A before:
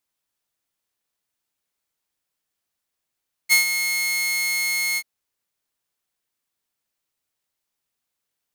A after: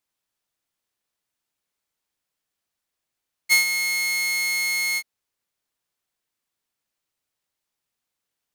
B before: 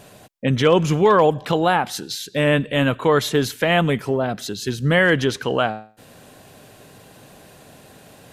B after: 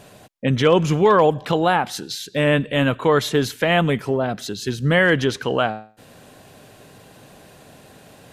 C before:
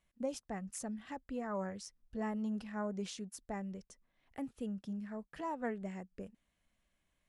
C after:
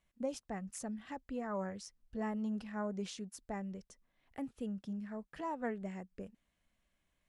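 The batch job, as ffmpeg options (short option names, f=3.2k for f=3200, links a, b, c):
-af "highshelf=f=9k:g=-4"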